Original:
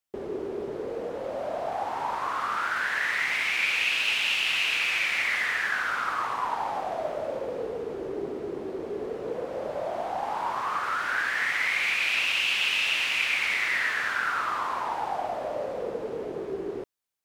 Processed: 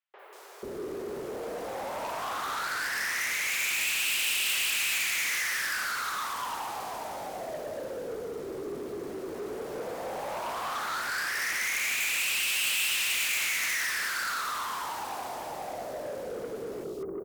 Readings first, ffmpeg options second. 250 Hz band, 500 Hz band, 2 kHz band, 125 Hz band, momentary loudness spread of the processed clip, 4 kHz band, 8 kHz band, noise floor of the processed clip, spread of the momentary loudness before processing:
-3.5 dB, -4.5 dB, -4.5 dB, -3.0 dB, 12 LU, -2.0 dB, +10.5 dB, -39 dBFS, 11 LU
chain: -filter_complex "[0:a]acrossover=split=760|2900[s0][s1][s2];[s2]adelay=190[s3];[s0]adelay=490[s4];[s4][s1][s3]amix=inputs=3:normalize=0,asoftclip=type=tanh:threshold=0.0335,aemphasis=mode=production:type=75fm"

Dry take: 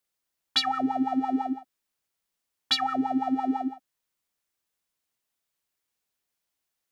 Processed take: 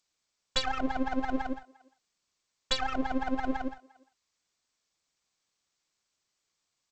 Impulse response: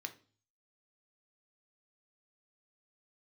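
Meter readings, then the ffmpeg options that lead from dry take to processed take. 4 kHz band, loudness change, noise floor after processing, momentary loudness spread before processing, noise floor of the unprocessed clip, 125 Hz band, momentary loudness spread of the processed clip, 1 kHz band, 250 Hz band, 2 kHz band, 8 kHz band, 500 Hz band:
-6.5 dB, -5.5 dB, -82 dBFS, 7 LU, -83 dBFS, +5.0 dB, 8 LU, -5.5 dB, -6.0 dB, +1.5 dB, -0.5 dB, +2.5 dB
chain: -filter_complex "[0:a]aeval=exprs='max(val(0),0)':c=same,asplit=2[s0][s1];[s1]adelay=350,highpass=300,lowpass=3400,asoftclip=type=hard:threshold=0.119,volume=0.0562[s2];[s0][s2]amix=inputs=2:normalize=0" -ar 16000 -c:a g722

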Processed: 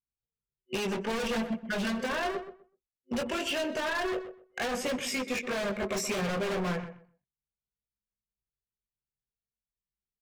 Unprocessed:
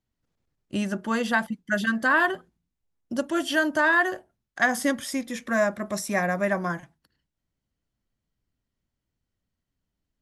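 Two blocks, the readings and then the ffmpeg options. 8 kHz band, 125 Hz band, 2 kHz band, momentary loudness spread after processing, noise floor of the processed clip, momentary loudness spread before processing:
-2.5 dB, -3.0 dB, -11.0 dB, 6 LU, under -85 dBFS, 11 LU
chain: -filter_complex "[0:a]highpass=f=220:p=1,anlmdn=0.0398,superequalizer=6b=0.282:7b=2.82:12b=3.98:16b=0.316,acrossover=split=630[s0][s1];[s1]acompressor=threshold=0.0224:ratio=12[s2];[s0][s2]amix=inputs=2:normalize=0,asoftclip=type=hard:threshold=0.0355,flanger=delay=19.5:depth=2.9:speed=0.37,aeval=exprs='0.0224*(abs(mod(val(0)/0.0224+3,4)-2)-1)':c=same,asplit=2[s3][s4];[s4]adelay=126,lowpass=f=1900:p=1,volume=0.316,asplit=2[s5][s6];[s6]adelay=126,lowpass=f=1900:p=1,volume=0.21,asplit=2[s7][s8];[s8]adelay=126,lowpass=f=1900:p=1,volume=0.21[s9];[s3][s5][s7][s9]amix=inputs=4:normalize=0,volume=2.24"

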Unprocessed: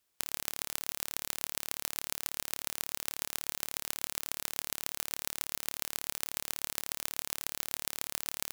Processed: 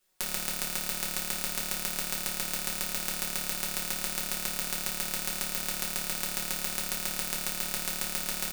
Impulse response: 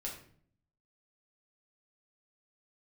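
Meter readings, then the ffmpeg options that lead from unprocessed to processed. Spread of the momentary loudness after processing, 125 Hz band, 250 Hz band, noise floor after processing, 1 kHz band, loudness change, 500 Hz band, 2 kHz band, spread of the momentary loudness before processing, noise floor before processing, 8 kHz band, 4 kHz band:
0 LU, +9.5 dB, +10.5 dB, -37 dBFS, +5.5 dB, +5.5 dB, +7.0 dB, +6.5 dB, 0 LU, -78 dBFS, +5.0 dB, +5.5 dB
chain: -filter_complex "[0:a]aecho=1:1:5.4:0.71[s0];[1:a]atrim=start_sample=2205,atrim=end_sample=4410[s1];[s0][s1]afir=irnorm=-1:irlink=0,volume=1.78"

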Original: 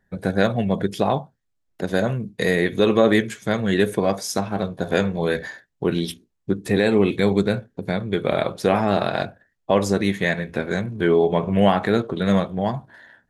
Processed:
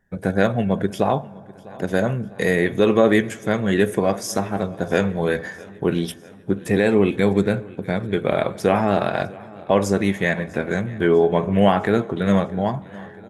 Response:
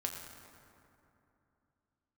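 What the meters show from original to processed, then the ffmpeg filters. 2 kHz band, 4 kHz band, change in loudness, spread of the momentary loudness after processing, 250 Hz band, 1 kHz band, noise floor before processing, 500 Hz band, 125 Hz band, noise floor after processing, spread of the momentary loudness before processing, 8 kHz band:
+1.0 dB, -3.0 dB, +1.0 dB, 10 LU, +1.0 dB, +1.0 dB, -73 dBFS, +1.0 dB, +1.0 dB, -43 dBFS, 9 LU, +0.5 dB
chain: -filter_complex "[0:a]equalizer=f=4100:t=o:w=0.39:g=-8.5,aecho=1:1:650|1300|1950|2600:0.0794|0.0469|0.0277|0.0163,asplit=2[s0][s1];[1:a]atrim=start_sample=2205[s2];[s1][s2]afir=irnorm=-1:irlink=0,volume=0.133[s3];[s0][s3]amix=inputs=2:normalize=0"

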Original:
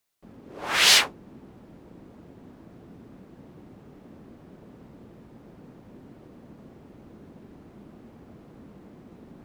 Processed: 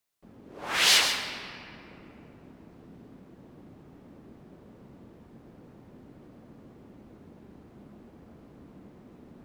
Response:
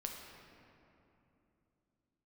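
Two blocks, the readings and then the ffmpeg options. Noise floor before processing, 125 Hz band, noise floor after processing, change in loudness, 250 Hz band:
-52 dBFS, -3.0 dB, -54 dBFS, -5.0 dB, -3.0 dB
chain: -filter_complex "[0:a]asplit=2[s0][s1];[1:a]atrim=start_sample=2205,adelay=129[s2];[s1][s2]afir=irnorm=-1:irlink=0,volume=0.596[s3];[s0][s3]amix=inputs=2:normalize=0,volume=0.631"

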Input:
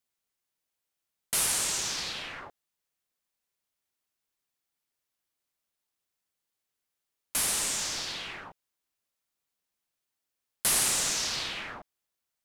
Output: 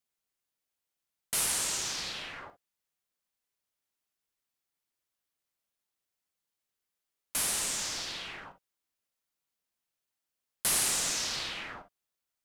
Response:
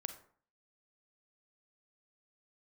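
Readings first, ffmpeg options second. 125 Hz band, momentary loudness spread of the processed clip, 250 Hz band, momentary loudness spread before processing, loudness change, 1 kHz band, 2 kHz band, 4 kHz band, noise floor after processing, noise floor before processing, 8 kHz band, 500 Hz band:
-2.5 dB, 16 LU, -2.0 dB, 16 LU, -2.5 dB, -2.5 dB, -2.5 dB, -2.5 dB, under -85 dBFS, under -85 dBFS, -2.5 dB, -2.5 dB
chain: -filter_complex "[1:a]atrim=start_sample=2205,atrim=end_sample=3087[s0];[0:a][s0]afir=irnorm=-1:irlink=0"

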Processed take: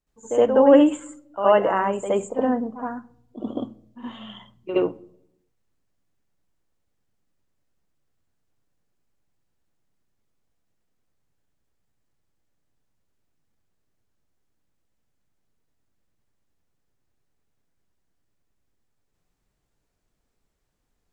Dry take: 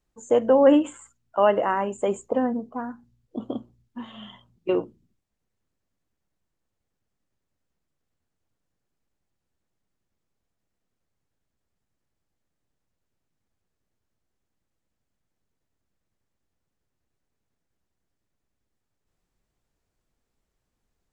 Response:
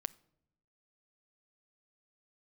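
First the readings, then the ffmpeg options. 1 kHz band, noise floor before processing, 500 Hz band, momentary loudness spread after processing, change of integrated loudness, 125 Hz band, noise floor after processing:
+2.5 dB, -81 dBFS, +2.5 dB, 23 LU, +2.5 dB, +2.0 dB, -75 dBFS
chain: -filter_complex "[0:a]asplit=2[s0][s1];[1:a]atrim=start_sample=2205,adelay=69[s2];[s1][s2]afir=irnorm=-1:irlink=0,volume=3.35[s3];[s0][s3]amix=inputs=2:normalize=0,volume=0.447"

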